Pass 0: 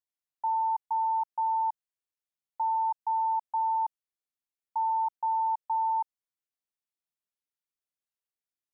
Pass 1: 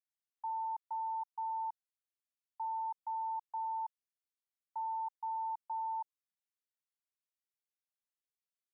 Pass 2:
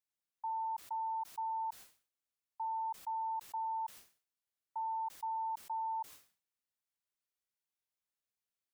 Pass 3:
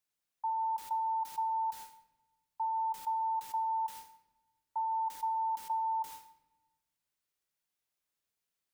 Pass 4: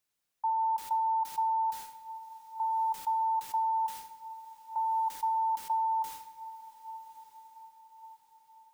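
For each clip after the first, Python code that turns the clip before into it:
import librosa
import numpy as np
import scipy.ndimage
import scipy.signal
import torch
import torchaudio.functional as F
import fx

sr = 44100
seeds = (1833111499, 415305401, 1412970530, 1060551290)

y1 = scipy.signal.sosfilt(scipy.signal.butter(2, 840.0, 'highpass', fs=sr, output='sos'), x)
y1 = y1 * 10.0 ** (-7.5 / 20.0)
y2 = fx.sustainer(y1, sr, db_per_s=140.0)
y3 = fx.room_shoebox(y2, sr, seeds[0], volume_m3=640.0, walls='mixed', distance_m=0.36)
y3 = y3 * 10.0 ** (4.5 / 20.0)
y4 = fx.echo_diffused(y3, sr, ms=1156, feedback_pct=45, wet_db=-15.5)
y4 = y4 * 10.0 ** (4.0 / 20.0)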